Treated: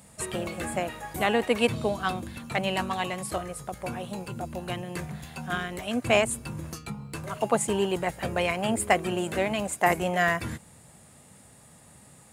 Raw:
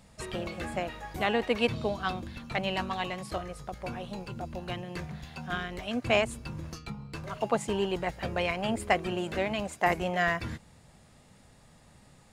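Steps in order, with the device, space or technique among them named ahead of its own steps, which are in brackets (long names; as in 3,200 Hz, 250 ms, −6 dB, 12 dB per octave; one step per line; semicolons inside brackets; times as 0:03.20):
budget condenser microphone (high-pass filter 79 Hz; high shelf with overshoot 6,800 Hz +8.5 dB, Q 1.5)
level +3.5 dB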